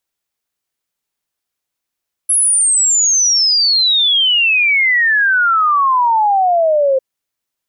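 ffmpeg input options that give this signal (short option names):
-f lavfi -i "aevalsrc='0.335*clip(min(t,4.7-t)/0.01,0,1)*sin(2*PI*11000*4.7/log(520/11000)*(exp(log(520/11000)*t/4.7)-1))':d=4.7:s=44100"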